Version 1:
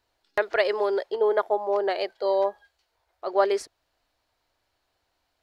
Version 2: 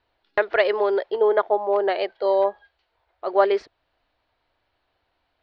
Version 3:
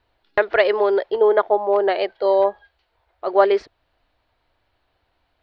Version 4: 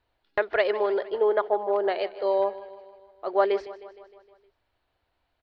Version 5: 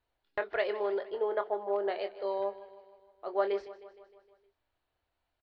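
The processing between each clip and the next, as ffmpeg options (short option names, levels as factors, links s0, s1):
-af "lowpass=f=3800:w=0.5412,lowpass=f=3800:w=1.3066,volume=1.5"
-af "lowshelf=f=170:g=6,volume=1.33"
-af "aecho=1:1:155|310|465|620|775|930:0.15|0.0883|0.0521|0.0307|0.0181|0.0107,volume=0.447"
-filter_complex "[0:a]asplit=2[s0][s1];[s1]adelay=25,volume=0.335[s2];[s0][s2]amix=inputs=2:normalize=0,volume=0.398"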